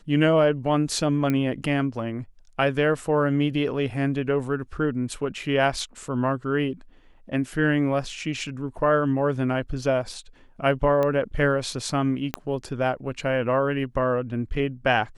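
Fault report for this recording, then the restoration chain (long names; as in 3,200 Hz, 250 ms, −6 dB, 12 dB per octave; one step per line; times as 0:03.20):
0:01.30: click −13 dBFS
0:11.03: click −14 dBFS
0:12.34: click −11 dBFS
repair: click removal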